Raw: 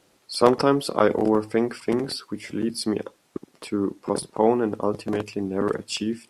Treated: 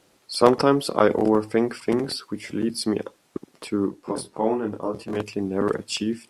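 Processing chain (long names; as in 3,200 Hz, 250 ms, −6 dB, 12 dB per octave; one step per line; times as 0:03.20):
0:03.87–0:05.15: micro pitch shift up and down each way 18 cents → 30 cents
level +1 dB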